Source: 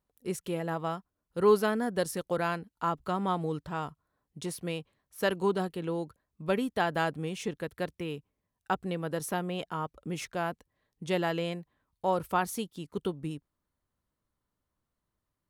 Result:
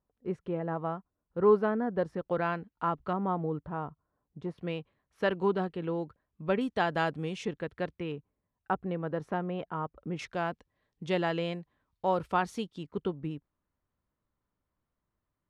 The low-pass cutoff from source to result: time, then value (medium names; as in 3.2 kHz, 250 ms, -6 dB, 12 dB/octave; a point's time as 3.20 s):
1.4 kHz
from 2.25 s 2.5 kHz
from 3.13 s 1.2 kHz
from 4.58 s 2.8 kHz
from 6.61 s 5.3 kHz
from 7.45 s 3.1 kHz
from 8.12 s 1.7 kHz
from 10.19 s 4.6 kHz
from 12.83 s 2.6 kHz